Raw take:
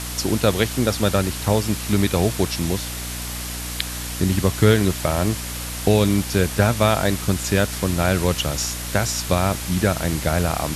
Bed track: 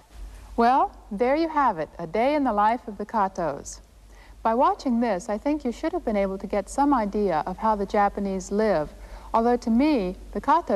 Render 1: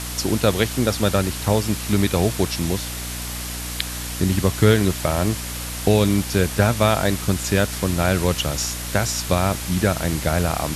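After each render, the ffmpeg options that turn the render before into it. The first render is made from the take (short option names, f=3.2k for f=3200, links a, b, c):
-af anull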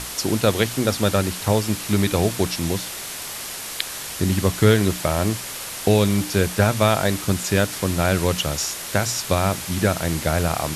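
-af "bandreject=f=60:t=h:w=6,bandreject=f=120:t=h:w=6,bandreject=f=180:t=h:w=6,bandreject=f=240:t=h:w=6,bandreject=f=300:t=h:w=6"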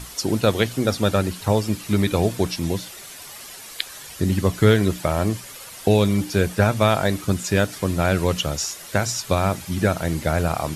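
-af "afftdn=nr=10:nf=-32"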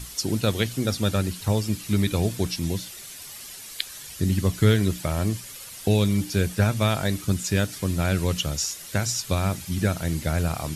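-af "equalizer=f=760:w=0.43:g=-8.5"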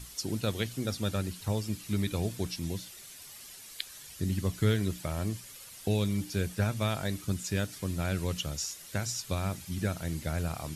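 -af "volume=-8dB"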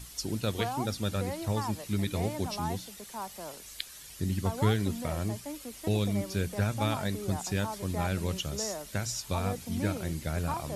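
-filter_complex "[1:a]volume=-16dB[a];[0:a][a]amix=inputs=2:normalize=0"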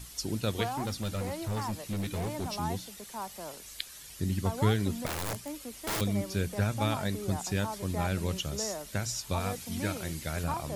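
-filter_complex "[0:a]asettb=1/sr,asplit=3[a][b][c];[a]atrim=end=0.664[d];[b]atrim=start=0.66:end=2.55,asetpts=PTS-STARTPTS,afade=t=in:d=0.004:c=qsin,afade=t=out:st=1.886:d=0.004:c=qsin,volume=29dB,asoftclip=hard,volume=-29dB[e];[c]atrim=start=2.546[f];[d][e]acrossfade=d=0.004:c1=hsin:c2=qsin[g];[g][f]acrossfade=d=0.004:c1=qsin:c2=hsin,asettb=1/sr,asplit=3[h][i][j];[h]atrim=end=5.064[k];[i]atrim=start=5.06:end=6.01,asetpts=PTS-STARTPTS,afade=t=in:d=0.004:c=qsin,afade=t=out:st=0.946:d=0.004:c=qsin,aeval=exprs='(mod(25.1*val(0)+1,2)-1)/25.1':c=same[l];[j]atrim=start=6.006[m];[k][l]acrossfade=d=0.004:c1=hsin:c2=qsin[n];[n][m]acrossfade=d=0.004:c1=qsin:c2=hsin,asettb=1/sr,asplit=3[o][p][q];[o]atrim=end=9.404[r];[p]atrim=start=9.4:end=10.44,asetpts=PTS-STARTPTS,afade=t=in:d=0.004:c=qsin,afade=t=out:st=1.036:d=0.004:c=qsin,tiltshelf=f=890:g=-3.5[s];[q]atrim=start=10.436[t];[r][s]acrossfade=d=0.004:c1=hsin:c2=qsin[u];[u][t]acrossfade=d=0.004:c1=qsin:c2=hsin"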